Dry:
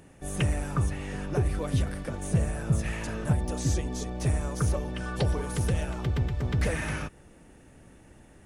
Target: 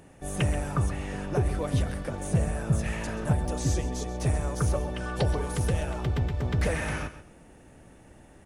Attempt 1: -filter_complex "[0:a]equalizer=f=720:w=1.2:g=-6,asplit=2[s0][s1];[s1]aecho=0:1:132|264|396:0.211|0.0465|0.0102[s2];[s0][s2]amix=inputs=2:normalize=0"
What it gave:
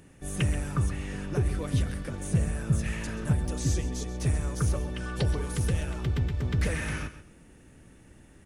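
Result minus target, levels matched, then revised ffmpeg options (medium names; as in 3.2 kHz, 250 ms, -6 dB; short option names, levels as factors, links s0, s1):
1 kHz band -5.5 dB
-filter_complex "[0:a]equalizer=f=720:w=1.2:g=3.5,asplit=2[s0][s1];[s1]aecho=0:1:132|264|396:0.211|0.0465|0.0102[s2];[s0][s2]amix=inputs=2:normalize=0"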